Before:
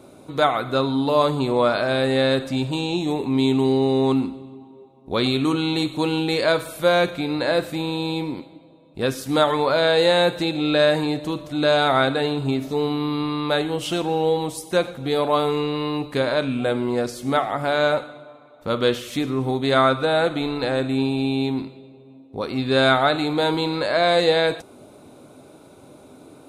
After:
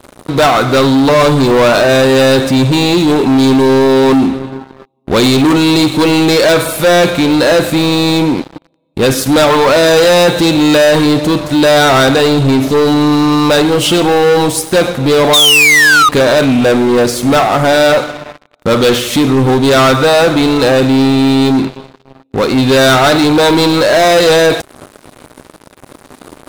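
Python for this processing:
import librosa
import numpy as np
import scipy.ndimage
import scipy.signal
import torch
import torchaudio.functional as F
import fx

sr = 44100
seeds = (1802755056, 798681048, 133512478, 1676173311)

y = fx.spec_paint(x, sr, seeds[0], shape='fall', start_s=15.33, length_s=0.76, low_hz=1200.0, high_hz=3800.0, level_db=-14.0)
y = fx.leveller(y, sr, passes=5)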